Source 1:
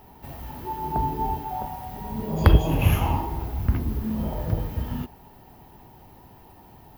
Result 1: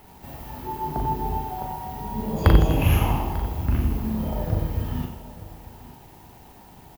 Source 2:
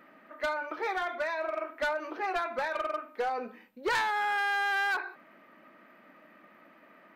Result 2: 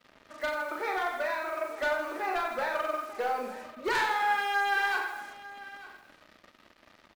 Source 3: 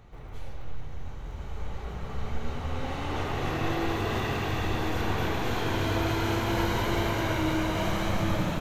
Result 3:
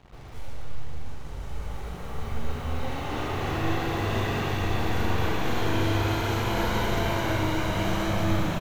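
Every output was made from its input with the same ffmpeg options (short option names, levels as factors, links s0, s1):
-filter_complex "[0:a]asplit=2[s0][s1];[s1]aecho=0:1:40|92|159.6|247.5|361.7:0.631|0.398|0.251|0.158|0.1[s2];[s0][s2]amix=inputs=2:normalize=0,acrusher=bits=7:mix=0:aa=0.5,asplit=2[s3][s4];[s4]aecho=0:1:894:0.133[s5];[s3][s5]amix=inputs=2:normalize=0,volume=0.891"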